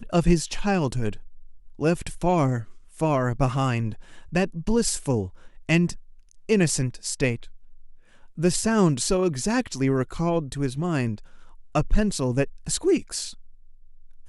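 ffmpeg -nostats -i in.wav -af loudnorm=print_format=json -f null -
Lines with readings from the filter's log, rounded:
"input_i" : "-24.9",
"input_tp" : "-6.6",
"input_lra" : "2.8",
"input_thresh" : "-36.0",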